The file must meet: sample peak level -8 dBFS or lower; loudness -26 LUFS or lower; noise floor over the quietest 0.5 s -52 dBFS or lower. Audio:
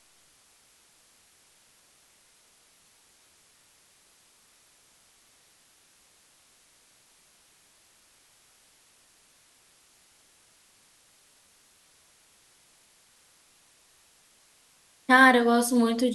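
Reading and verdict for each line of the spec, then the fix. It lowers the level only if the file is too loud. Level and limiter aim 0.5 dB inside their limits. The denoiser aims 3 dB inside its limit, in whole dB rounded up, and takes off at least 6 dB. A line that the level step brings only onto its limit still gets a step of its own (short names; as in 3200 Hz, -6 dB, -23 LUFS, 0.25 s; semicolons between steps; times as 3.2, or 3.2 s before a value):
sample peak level -5.5 dBFS: fail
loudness -20.0 LUFS: fail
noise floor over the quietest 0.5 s -62 dBFS: OK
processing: gain -6.5 dB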